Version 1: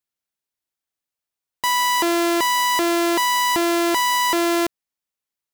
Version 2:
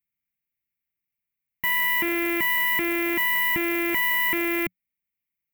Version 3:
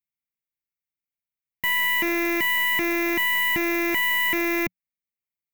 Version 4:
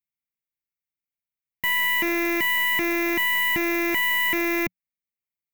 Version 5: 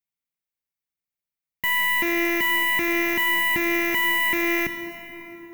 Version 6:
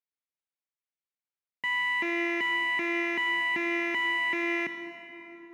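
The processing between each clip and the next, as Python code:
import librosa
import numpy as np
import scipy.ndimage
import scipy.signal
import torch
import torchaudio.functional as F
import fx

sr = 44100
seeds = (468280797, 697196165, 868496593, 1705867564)

y1 = fx.curve_eq(x, sr, hz=(110.0, 180.0, 580.0, 1500.0, 2200.0, 4300.0, 6800.0, 15000.0), db=(0, 3, -20, -12, 4, -27, -23, 2))
y1 = y1 * 10.0 ** (3.0 / 20.0)
y2 = fx.leveller(y1, sr, passes=2)
y2 = y2 * 10.0 ** (-4.0 / 20.0)
y3 = y2
y4 = fx.rev_plate(y3, sr, seeds[0], rt60_s=4.3, hf_ratio=0.55, predelay_ms=0, drr_db=6.5)
y5 = fx.bandpass_edges(y4, sr, low_hz=250.0, high_hz=3800.0)
y5 = y5 * 10.0 ** (-5.5 / 20.0)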